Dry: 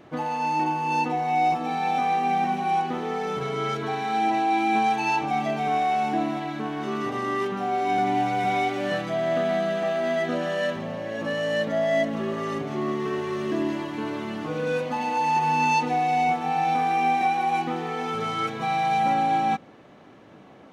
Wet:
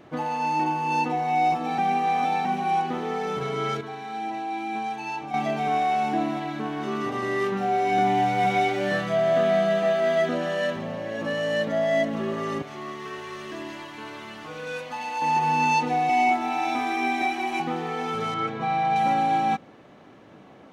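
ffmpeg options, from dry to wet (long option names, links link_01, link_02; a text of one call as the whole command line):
ffmpeg -i in.wav -filter_complex "[0:a]asettb=1/sr,asplit=3[link_01][link_02][link_03];[link_01]atrim=end=7.204[link_04];[link_02]atrim=start=7.2:end=10.29,asetpts=PTS-STARTPTS,afade=type=in:duration=0.004:curve=qsin,afade=type=out:start_time=3.086:duration=0.004:curve=qsin,asplit=2[link_05][link_06];[link_06]adelay=26,volume=-3.5dB[link_07];[link_05][link_07]amix=inputs=2:normalize=0,atrim=end_sample=136269[link_08];[link_03]atrim=start=10.286[link_09];[link_04][link_08]acrossfade=duration=0.004:curve1=hsin:curve2=qsin[link_10];[link_10][link_09]acrossfade=duration=0.004:curve1=qsin:curve2=hsin,asettb=1/sr,asplit=3[link_11][link_12][link_13];[link_11]atrim=end=12.624[link_14];[link_12]atrim=start=12.62:end=15.22,asetpts=PTS-STARTPTS,afade=type=in:duration=0.004:curve=qsin,afade=type=out:start_time=2.596:duration=0.004:curve=qsin,equalizer=frequency=230:width=0.39:gain=-13[link_15];[link_13]atrim=start=15.216[link_16];[link_14][link_15]acrossfade=duration=0.004:curve1=hsin:curve2=qsin[link_17];[link_17][link_16]acrossfade=duration=0.004:curve1=qsin:curve2=hsin,asettb=1/sr,asplit=3[link_18][link_19][link_20];[link_18]atrim=end=16.094[link_21];[link_19]atrim=start=16.09:end=17.6,asetpts=PTS-STARTPTS,afade=type=in:duration=0.004:curve=qsin,afade=type=out:start_time=1.506:duration=0.004:curve=qsin,aecho=1:1:3.1:0.88,atrim=end_sample=66591[link_22];[link_20]atrim=start=17.596[link_23];[link_21][link_22]acrossfade=duration=0.004:curve1=hsin:curve2=qsin[link_24];[link_24][link_23]acrossfade=duration=0.004:curve1=qsin:curve2=hsin,asettb=1/sr,asplit=3[link_25][link_26][link_27];[link_25]atrim=end=18.344[link_28];[link_26]atrim=start=18.34:end=18.96,asetpts=PTS-STARTPTS,afade=type=in:duration=0.004:curve=qsin,afade=type=out:start_time=0.616:duration=0.004:curve=qsin,aemphasis=mode=reproduction:type=75fm[link_29];[link_27]atrim=start=18.956[link_30];[link_28][link_29]acrossfade=duration=0.004:curve1=hsin:curve2=qsin[link_31];[link_31][link_30]acrossfade=duration=0.004:curve1=qsin:curve2=hsin,asplit=5[link_32][link_33][link_34][link_35][link_36];[link_32]atrim=end=1.782[link_37];[link_33]atrim=start=1.778:end=2.452,asetpts=PTS-STARTPTS,areverse[link_38];[link_34]atrim=start=2.448:end=3.812[link_39];[link_35]atrim=start=3.808:end=5.342,asetpts=PTS-STARTPTS,volume=-8dB[link_40];[link_36]atrim=start=5.338[link_41];[link_37][link_38]acrossfade=duration=0.004:curve1=hsin:curve2=hsin[link_42];[link_42][link_39]acrossfade=duration=0.004:curve1=hsin:curve2=hsin[link_43];[link_43][link_40]acrossfade=duration=0.004:curve1=hsin:curve2=hsin[link_44];[link_44][link_41]acrossfade=duration=0.004:curve1=hsin:curve2=hsin" out.wav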